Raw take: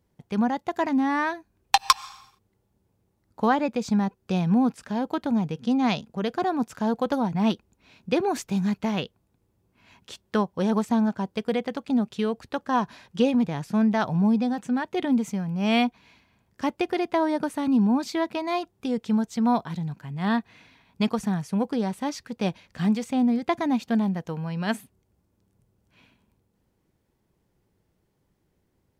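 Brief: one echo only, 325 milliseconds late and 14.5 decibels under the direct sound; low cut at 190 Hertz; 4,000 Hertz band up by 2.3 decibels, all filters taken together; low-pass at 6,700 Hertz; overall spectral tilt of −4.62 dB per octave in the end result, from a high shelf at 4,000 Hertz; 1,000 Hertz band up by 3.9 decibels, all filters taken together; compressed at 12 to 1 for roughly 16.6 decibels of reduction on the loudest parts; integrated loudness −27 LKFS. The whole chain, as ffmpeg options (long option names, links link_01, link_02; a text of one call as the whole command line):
ffmpeg -i in.wav -af "highpass=190,lowpass=6700,equalizer=frequency=1000:width_type=o:gain=5,highshelf=frequency=4000:gain=-4,equalizer=frequency=4000:width_type=o:gain=5.5,acompressor=threshold=-27dB:ratio=12,aecho=1:1:325:0.188,volume=6dB" out.wav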